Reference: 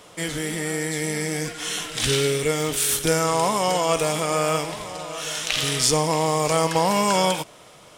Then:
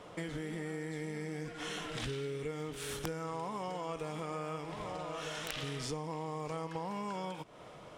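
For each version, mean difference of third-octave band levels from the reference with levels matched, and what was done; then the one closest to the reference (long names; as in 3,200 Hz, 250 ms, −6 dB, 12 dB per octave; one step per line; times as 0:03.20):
6.5 dB: low-pass filter 1,300 Hz 6 dB per octave
dynamic equaliser 620 Hz, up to −6 dB, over −39 dBFS, Q 3.5
downward compressor 6 to 1, threshold −36 dBFS, peak gain reduction 17 dB
wrap-around overflow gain 24 dB
level −1 dB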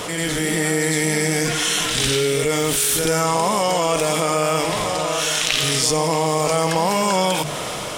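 4.0 dB: mains-hum notches 50/100/150 Hz
automatic gain control
on a send: backwards echo 91 ms −9.5 dB
on the sum: envelope flattener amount 70%
level −7.5 dB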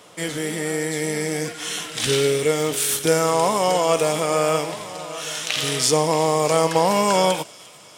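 2.0 dB: high-pass filter 110 Hz
dynamic equaliser 500 Hz, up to +4 dB, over −33 dBFS, Q 1
delay with a high-pass on its return 350 ms, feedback 65%, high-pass 2,500 Hz, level −19 dB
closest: third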